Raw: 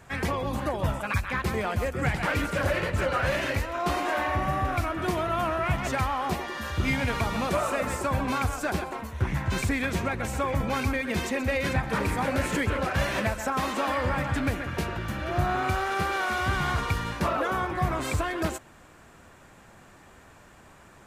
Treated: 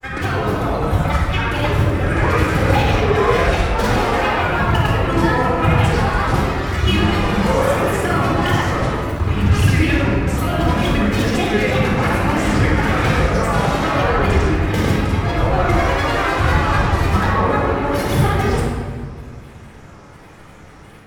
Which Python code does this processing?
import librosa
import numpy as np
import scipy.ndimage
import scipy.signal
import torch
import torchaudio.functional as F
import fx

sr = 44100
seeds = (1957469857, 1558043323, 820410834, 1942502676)

y = fx.granulator(x, sr, seeds[0], grain_ms=100.0, per_s=20.0, spray_ms=100.0, spread_st=7)
y = fx.room_shoebox(y, sr, seeds[1], volume_m3=2100.0, walls='mixed', distance_m=4.0)
y = F.gain(torch.from_numpy(y), 4.0).numpy()